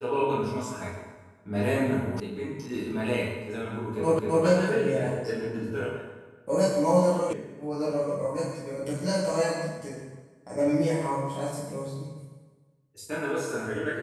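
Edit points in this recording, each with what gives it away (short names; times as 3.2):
2.2 sound cut off
4.19 repeat of the last 0.26 s
7.33 sound cut off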